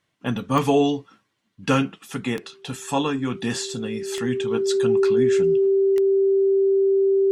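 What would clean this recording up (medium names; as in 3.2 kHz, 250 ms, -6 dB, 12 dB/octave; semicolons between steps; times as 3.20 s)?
de-click; band-stop 390 Hz, Q 30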